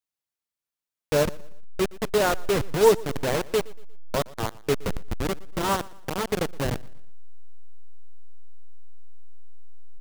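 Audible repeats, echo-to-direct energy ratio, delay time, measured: 2, -21.5 dB, 0.118 s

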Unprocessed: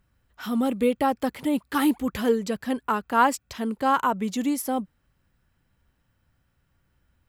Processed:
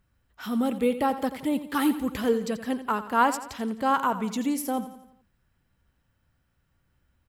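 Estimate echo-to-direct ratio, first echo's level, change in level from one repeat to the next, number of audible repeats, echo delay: -12.0 dB, -13.0 dB, -6.0 dB, 4, 86 ms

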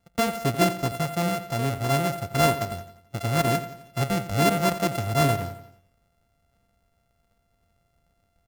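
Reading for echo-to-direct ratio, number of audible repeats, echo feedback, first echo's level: -12.0 dB, 4, 49%, -13.0 dB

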